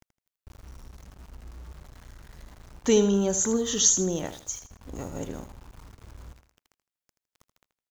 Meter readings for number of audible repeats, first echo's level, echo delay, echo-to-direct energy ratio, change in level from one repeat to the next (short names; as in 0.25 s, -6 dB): 3, -11.5 dB, 80 ms, -11.0 dB, -11.0 dB